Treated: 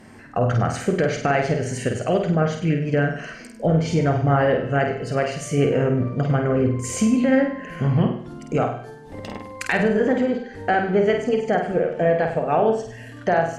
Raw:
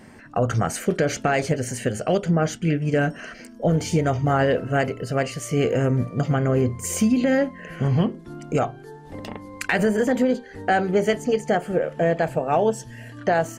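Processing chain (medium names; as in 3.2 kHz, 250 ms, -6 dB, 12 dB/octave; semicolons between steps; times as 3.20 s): low-pass that closes with the level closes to 2.9 kHz, closed at -16.5 dBFS; flutter echo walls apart 8.5 m, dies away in 0.55 s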